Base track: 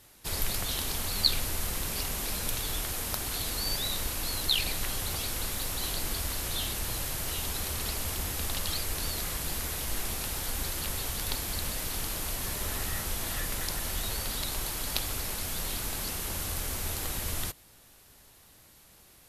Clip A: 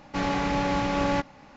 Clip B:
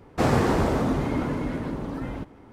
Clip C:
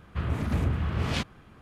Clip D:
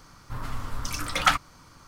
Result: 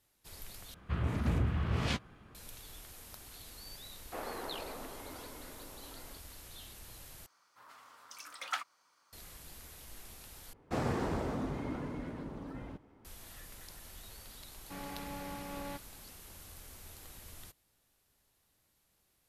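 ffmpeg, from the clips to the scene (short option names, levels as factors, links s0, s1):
-filter_complex "[2:a]asplit=2[s0][s1];[0:a]volume=0.126[s2];[3:a]asplit=2[s3][s4];[s4]adelay=17,volume=0.224[s5];[s3][s5]amix=inputs=2:normalize=0[s6];[s0]highpass=460,lowpass=3400[s7];[4:a]highpass=630[s8];[s2]asplit=4[s9][s10][s11][s12];[s9]atrim=end=0.744[s13];[s6]atrim=end=1.61,asetpts=PTS-STARTPTS,volume=0.596[s14];[s10]atrim=start=2.346:end=7.264[s15];[s8]atrim=end=1.87,asetpts=PTS-STARTPTS,volume=0.168[s16];[s11]atrim=start=9.126:end=10.534[s17];[s1]atrim=end=2.52,asetpts=PTS-STARTPTS,volume=0.237[s18];[s12]atrim=start=13.046[s19];[s7]atrim=end=2.52,asetpts=PTS-STARTPTS,volume=0.15,afade=t=in:d=0.004:c=hsin,afade=t=out:st=2.516:d=0.004:c=hsin,adelay=3940[s20];[1:a]atrim=end=1.56,asetpts=PTS-STARTPTS,volume=0.126,afade=t=in:d=0.004:c=hsin,afade=t=out:st=1.556:d=0.004:c=hsin,adelay=14560[s21];[s13][s14]acrossfade=d=0.004:c1=hsin:c2=hsin[s22];[s22][s15]acrossfade=d=0.004:c1=hsin:c2=hsin[s23];[s23][s16]acrossfade=d=0.004:c1=hsin:c2=hsin[s24];[s24][s17]acrossfade=d=0.004:c1=hsin:c2=hsin[s25];[s25][s18]acrossfade=d=0.004:c1=hsin:c2=hsin[s26];[s26][s19]acrossfade=d=0.004:c1=hsin:c2=hsin[s27];[s27][s20][s21]amix=inputs=3:normalize=0"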